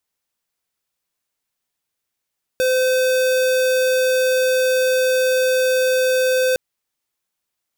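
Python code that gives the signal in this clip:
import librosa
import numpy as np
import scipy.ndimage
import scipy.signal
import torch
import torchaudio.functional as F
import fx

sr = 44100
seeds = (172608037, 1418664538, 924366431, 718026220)

y = fx.tone(sr, length_s=3.96, wave='square', hz=513.0, level_db=-17.0)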